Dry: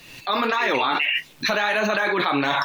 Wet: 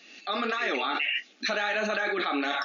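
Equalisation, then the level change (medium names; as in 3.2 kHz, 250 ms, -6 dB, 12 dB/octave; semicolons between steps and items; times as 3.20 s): brick-wall FIR band-pass 190–7000 Hz; Butterworth band-stop 980 Hz, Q 4.1; band-stop 520 Hz, Q 12; -6.0 dB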